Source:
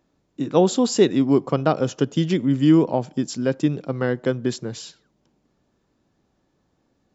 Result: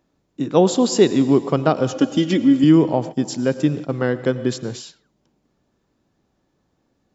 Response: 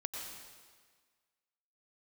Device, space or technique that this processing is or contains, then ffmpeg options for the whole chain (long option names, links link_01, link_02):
keyed gated reverb: -filter_complex "[0:a]asplit=3[link_01][link_02][link_03];[1:a]atrim=start_sample=2205[link_04];[link_02][link_04]afir=irnorm=-1:irlink=0[link_05];[link_03]apad=whole_len=315258[link_06];[link_05][link_06]sidechaingate=range=-33dB:threshold=-33dB:ratio=16:detection=peak,volume=-8.5dB[link_07];[link_01][link_07]amix=inputs=2:normalize=0,asettb=1/sr,asplit=3[link_08][link_09][link_10];[link_08]atrim=end=1.934[link_11];[link_09]atrim=start=1.93:end=2.64,asetpts=PTS-STARTPTS,afade=type=in:duration=0.004:curve=qsin,afade=type=out:start_time=0.706:duration=0.004:curve=qsin,aecho=1:1:3.6:0.75,atrim=end_sample=31311[link_12];[link_10]atrim=start=2.636[link_13];[link_11][link_12]acrossfade=duration=0.004:curve1=hsin:curve2=qsin[link_14];[link_14][link_13]acrossfade=duration=0.004:curve1=qsin:curve2=hsin"